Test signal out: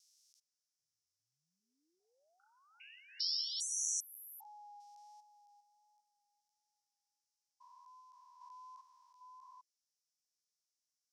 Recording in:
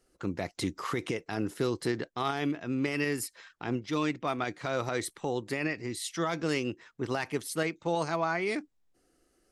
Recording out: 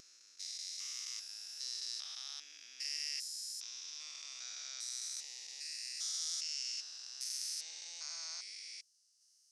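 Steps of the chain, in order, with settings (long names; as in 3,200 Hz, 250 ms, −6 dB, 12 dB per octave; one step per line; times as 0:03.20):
spectrum averaged block by block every 400 ms
four-pole ladder band-pass 6,000 Hz, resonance 65%
pitch vibrato 1.4 Hz 17 cents
level +16.5 dB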